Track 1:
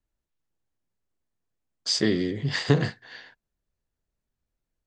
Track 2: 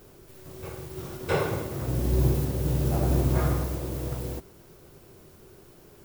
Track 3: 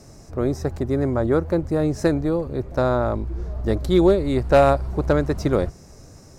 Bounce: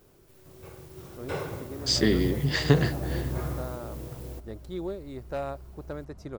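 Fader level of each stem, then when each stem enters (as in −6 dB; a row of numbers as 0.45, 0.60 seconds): 0.0, −7.5, −18.5 decibels; 0.00, 0.00, 0.80 seconds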